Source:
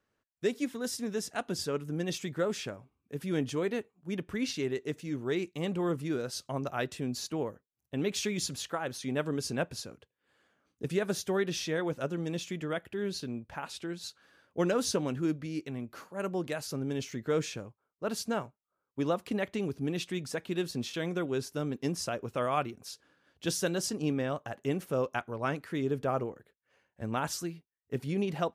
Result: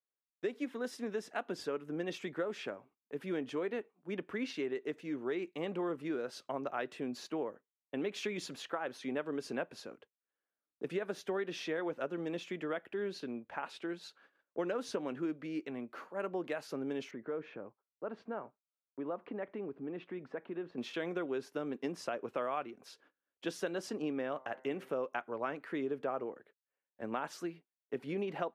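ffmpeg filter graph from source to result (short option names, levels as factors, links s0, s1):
-filter_complex "[0:a]asettb=1/sr,asplit=3[s0][s1][s2];[s0]atrim=end=17.114[s3];[s1]atrim=start=17.11:end=20.78,asetpts=PTS-STARTPTS,afade=t=in:d=0.004:c=qsin,afade=t=out:st=3.666:d=0.004:c=qsin,lowpass=1600,acompressor=threshold=0.0112:ratio=2:attack=3.2:release=140:knee=1:detection=peak[s4];[s2]atrim=start=20.776[s5];[s3][s4]acrossfade=d=0.004:c1=hsin:c2=qsin[s6];[s6][s5]acrossfade=d=0.004:c1=qsin:c2=hsin,asettb=1/sr,asplit=3[s7][s8][s9];[s7]atrim=end=24.324[s10];[s8]atrim=start=24.32:end=24.89,asetpts=PTS-STARTPTS,afade=t=in:d=0.004:c=qsin,afade=t=out:st=0.566:d=0.004:c=qsin,equalizer=f=2500:t=o:w=1.6:g=3,bandreject=f=130.1:t=h:w=4,bandreject=f=260.2:t=h:w=4,bandreject=f=390.3:t=h:w=4,bandreject=f=520.4:t=h:w=4,bandreject=f=650.5:t=h:w=4,bandreject=f=780.6:t=h:w=4,bandreject=f=910.7:t=h:w=4,bandreject=f=1040.8:t=h:w=4,bandreject=f=1170.9:t=h:w=4,bandreject=f=1301:t=h:w=4,bandreject=f=1431.1:t=h:w=4,bandreject=f=1561.2:t=h:w=4,bandreject=f=1691.3:t=h:w=4,bandreject=f=1821.4:t=h:w=4,bandreject=f=1951.5:t=h:w=4,bandreject=f=2081.6:t=h:w=4[s11];[s9]atrim=start=24.886[s12];[s10][s11]acrossfade=d=0.004:c1=hsin:c2=qsin[s13];[s13][s12]acrossfade=d=0.004:c1=qsin:c2=hsin,agate=range=0.0631:threshold=0.001:ratio=16:detection=peak,acrossover=split=230 3100:gain=0.0708 1 0.158[s14][s15][s16];[s14][s15][s16]amix=inputs=3:normalize=0,acompressor=threshold=0.02:ratio=4,volume=1.12"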